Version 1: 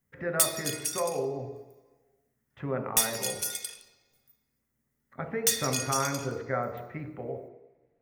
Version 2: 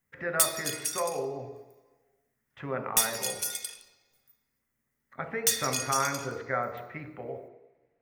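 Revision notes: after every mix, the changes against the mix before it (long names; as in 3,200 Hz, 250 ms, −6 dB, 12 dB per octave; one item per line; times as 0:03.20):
speech: add tilt shelving filter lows −5 dB, about 710 Hz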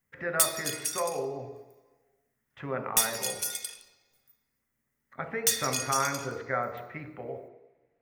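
nothing changed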